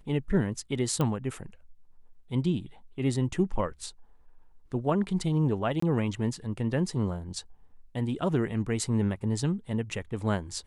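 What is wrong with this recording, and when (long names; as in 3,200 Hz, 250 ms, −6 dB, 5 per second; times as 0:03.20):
0:01.01: click −16 dBFS
0:05.80–0:05.82: drop-out 24 ms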